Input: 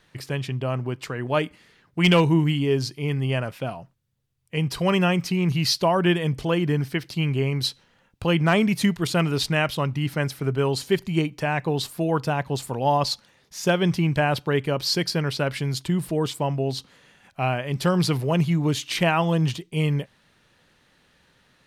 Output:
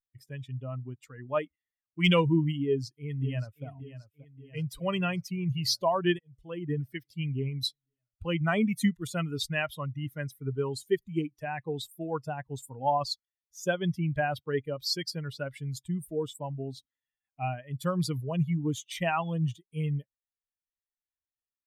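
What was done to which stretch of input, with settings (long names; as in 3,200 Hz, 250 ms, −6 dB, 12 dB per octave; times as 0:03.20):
0:02.63–0:03.66: delay throw 580 ms, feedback 70%, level −7.5 dB
0:06.19–0:06.84: fade in equal-power
whole clip: spectral dynamics exaggerated over time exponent 2; level −2.5 dB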